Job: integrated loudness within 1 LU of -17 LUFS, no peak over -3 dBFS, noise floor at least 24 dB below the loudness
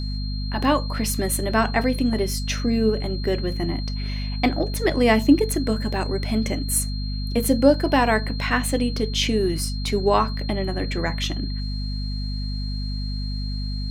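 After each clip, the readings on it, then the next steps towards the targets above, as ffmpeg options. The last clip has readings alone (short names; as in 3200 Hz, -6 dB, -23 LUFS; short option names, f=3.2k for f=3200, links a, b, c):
hum 50 Hz; harmonics up to 250 Hz; hum level -25 dBFS; steady tone 4200 Hz; tone level -36 dBFS; loudness -23.0 LUFS; peak -3.5 dBFS; loudness target -17.0 LUFS
-> -af "bandreject=f=50:t=h:w=6,bandreject=f=100:t=h:w=6,bandreject=f=150:t=h:w=6,bandreject=f=200:t=h:w=6,bandreject=f=250:t=h:w=6"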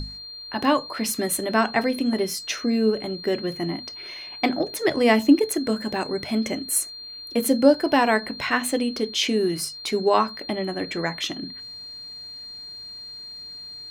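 hum none; steady tone 4200 Hz; tone level -36 dBFS
-> -af "bandreject=f=4.2k:w=30"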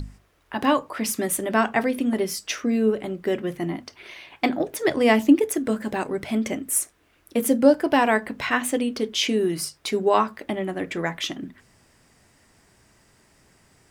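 steady tone none; loudness -23.5 LUFS; peak -4.5 dBFS; loudness target -17.0 LUFS
-> -af "volume=6.5dB,alimiter=limit=-3dB:level=0:latency=1"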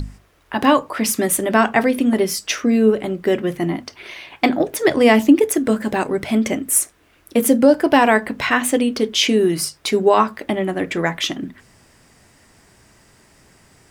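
loudness -17.5 LUFS; peak -3.0 dBFS; noise floor -55 dBFS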